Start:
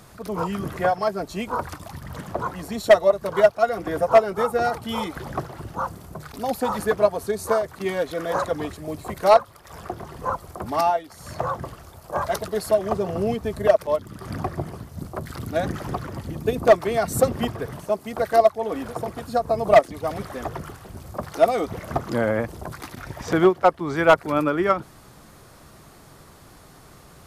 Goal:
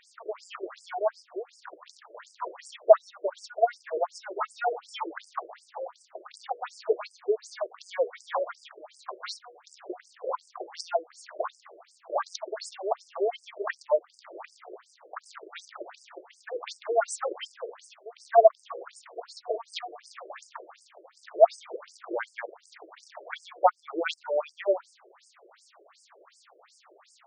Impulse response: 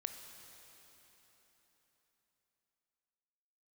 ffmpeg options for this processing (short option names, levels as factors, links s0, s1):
-af "bandreject=f=242.3:t=h:w=4,bandreject=f=484.6:t=h:w=4,bandreject=f=726.9:t=h:w=4,bandreject=f=969.2:t=h:w=4,bandreject=f=1211.5:t=h:w=4,bandreject=f=1453.8:t=h:w=4,bandreject=f=1696.1:t=h:w=4,afftfilt=real='re*between(b*sr/1024,440*pow(6800/440,0.5+0.5*sin(2*PI*2.7*pts/sr))/1.41,440*pow(6800/440,0.5+0.5*sin(2*PI*2.7*pts/sr))*1.41)':imag='im*between(b*sr/1024,440*pow(6800/440,0.5+0.5*sin(2*PI*2.7*pts/sr))/1.41,440*pow(6800/440,0.5+0.5*sin(2*PI*2.7*pts/sr))*1.41)':win_size=1024:overlap=0.75"